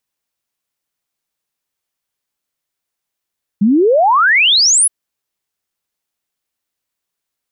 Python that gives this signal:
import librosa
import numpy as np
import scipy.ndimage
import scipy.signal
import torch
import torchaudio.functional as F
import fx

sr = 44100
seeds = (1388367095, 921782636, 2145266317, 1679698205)

y = fx.ess(sr, length_s=1.27, from_hz=190.0, to_hz=11000.0, level_db=-7.5)